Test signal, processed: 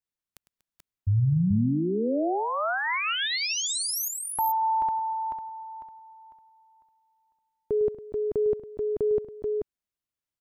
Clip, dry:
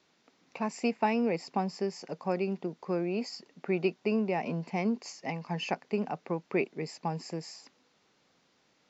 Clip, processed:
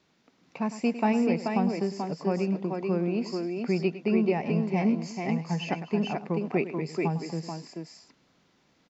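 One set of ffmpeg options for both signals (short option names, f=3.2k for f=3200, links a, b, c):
-filter_complex "[0:a]bass=f=250:g=8,treble=f=4k:g=-2,asplit=2[a][b];[b]aecho=0:1:104|240|432|435:0.211|0.119|0.299|0.631[c];[a][c]amix=inputs=2:normalize=0"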